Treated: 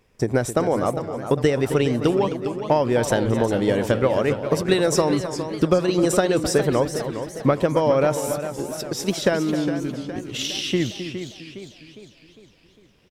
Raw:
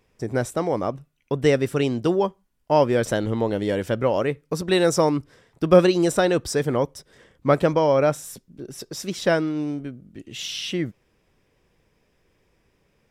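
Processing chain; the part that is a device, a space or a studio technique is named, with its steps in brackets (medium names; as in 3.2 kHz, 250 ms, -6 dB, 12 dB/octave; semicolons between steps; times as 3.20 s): drum-bus smash (transient shaper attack +7 dB, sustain +3 dB; compression, threshold -16 dBFS, peak gain reduction 12.5 dB; saturation -6.5 dBFS, distortion -25 dB); echo from a far wall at 45 m, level -11 dB; modulated delay 408 ms, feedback 50%, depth 146 cents, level -10 dB; trim +2 dB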